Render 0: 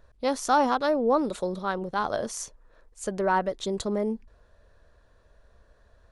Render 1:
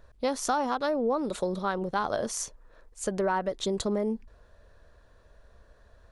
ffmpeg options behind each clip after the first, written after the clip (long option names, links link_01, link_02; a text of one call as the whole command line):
ffmpeg -i in.wav -af "acompressor=threshold=-26dB:ratio=5,volume=2dB" out.wav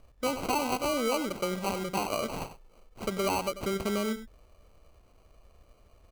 ffmpeg -i in.wav -af "acrusher=samples=25:mix=1:aa=0.000001,aecho=1:1:93:0.237,volume=-2dB" out.wav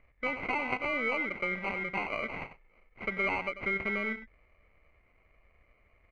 ffmpeg -i in.wav -filter_complex "[0:a]asplit=2[link_01][link_02];[link_02]acrusher=bits=4:dc=4:mix=0:aa=0.000001,volume=-9dB[link_03];[link_01][link_03]amix=inputs=2:normalize=0,lowpass=frequency=2100:width_type=q:width=16,volume=-8dB" out.wav